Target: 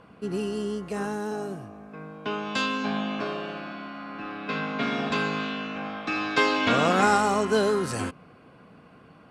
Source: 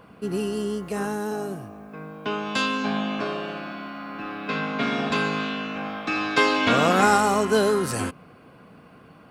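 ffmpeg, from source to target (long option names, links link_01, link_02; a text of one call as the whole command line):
ffmpeg -i in.wav -af "lowpass=8600,volume=-2.5dB" out.wav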